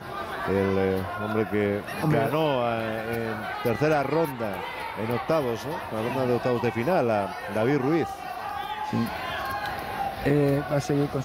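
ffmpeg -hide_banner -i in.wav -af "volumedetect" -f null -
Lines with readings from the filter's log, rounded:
mean_volume: -26.1 dB
max_volume: -11.3 dB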